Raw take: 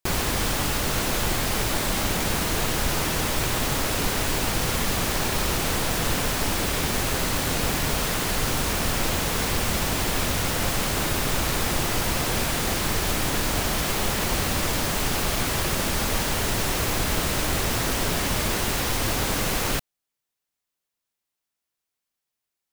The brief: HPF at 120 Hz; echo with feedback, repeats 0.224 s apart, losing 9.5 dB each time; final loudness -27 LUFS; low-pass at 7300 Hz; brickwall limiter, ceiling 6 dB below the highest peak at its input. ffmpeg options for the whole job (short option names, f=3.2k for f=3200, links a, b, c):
-af "highpass=120,lowpass=7.3k,alimiter=limit=-19.5dB:level=0:latency=1,aecho=1:1:224|448|672|896:0.335|0.111|0.0365|0.012,volume=0.5dB"